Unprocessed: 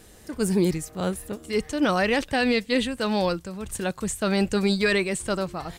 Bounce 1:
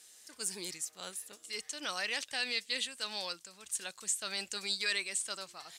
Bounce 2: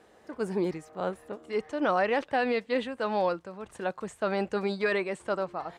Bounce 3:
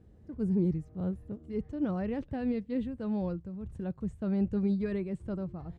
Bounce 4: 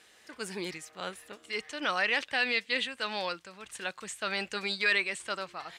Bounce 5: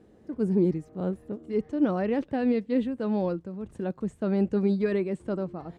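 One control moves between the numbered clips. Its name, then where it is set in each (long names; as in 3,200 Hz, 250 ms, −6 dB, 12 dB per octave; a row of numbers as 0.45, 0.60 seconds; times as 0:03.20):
resonant band-pass, frequency: 6,500, 810, 100, 2,400, 270 Hertz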